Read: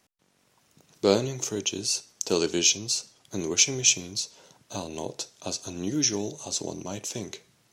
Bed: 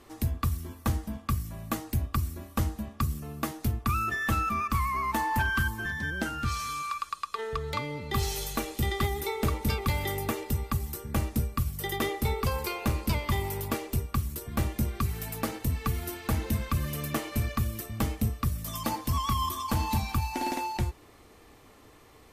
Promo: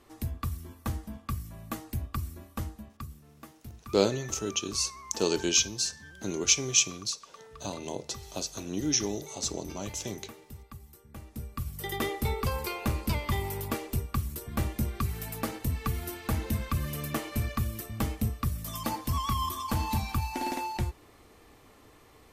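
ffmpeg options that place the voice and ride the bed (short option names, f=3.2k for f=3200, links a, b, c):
-filter_complex "[0:a]adelay=2900,volume=-2.5dB[a];[1:a]volume=10.5dB,afade=t=out:st=2.35:d=0.88:silence=0.251189,afade=t=in:st=11.25:d=0.74:silence=0.16788[b];[a][b]amix=inputs=2:normalize=0"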